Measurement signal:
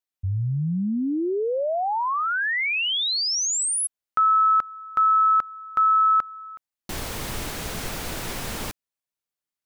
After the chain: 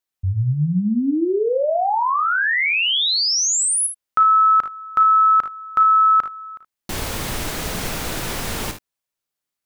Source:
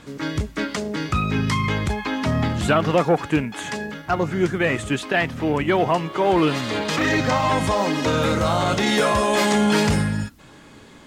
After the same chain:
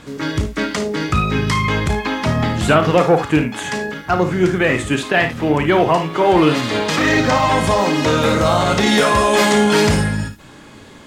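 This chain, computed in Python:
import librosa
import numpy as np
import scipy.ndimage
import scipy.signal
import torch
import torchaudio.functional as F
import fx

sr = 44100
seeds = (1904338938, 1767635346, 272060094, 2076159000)

y = fx.room_early_taps(x, sr, ms=(33, 55, 74), db=(-11.5, -10.5, -14.5))
y = y * librosa.db_to_amplitude(4.5)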